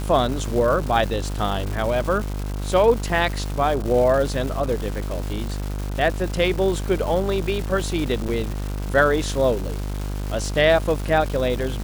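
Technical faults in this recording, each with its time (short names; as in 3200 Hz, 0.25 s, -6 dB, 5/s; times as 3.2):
buzz 50 Hz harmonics 32 -27 dBFS
crackle 590/s -28 dBFS
8.28–8.29 gap 7.1 ms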